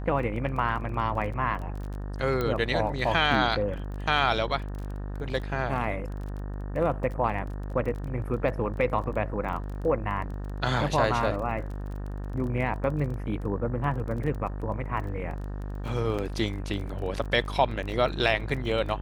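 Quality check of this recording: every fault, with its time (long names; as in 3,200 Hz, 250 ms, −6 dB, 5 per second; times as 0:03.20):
mains buzz 50 Hz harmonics 37 −34 dBFS
surface crackle 18 per second −35 dBFS
0:02.41: click −16 dBFS
0:16.18–0:16.19: drop-out 6.8 ms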